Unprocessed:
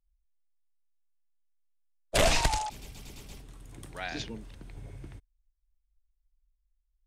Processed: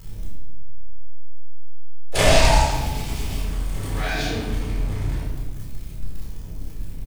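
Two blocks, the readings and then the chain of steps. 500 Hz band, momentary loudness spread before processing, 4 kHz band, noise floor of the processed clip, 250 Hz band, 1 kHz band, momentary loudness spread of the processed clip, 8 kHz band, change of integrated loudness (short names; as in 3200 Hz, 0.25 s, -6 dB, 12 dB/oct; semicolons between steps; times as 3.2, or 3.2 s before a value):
+10.0 dB, 23 LU, +8.0 dB, -32 dBFS, +12.0 dB, +9.5 dB, 21 LU, +7.0 dB, +6.5 dB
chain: zero-crossing step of -36 dBFS; doubler 30 ms -6 dB; shoebox room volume 870 m³, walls mixed, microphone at 4.1 m; gain -1.5 dB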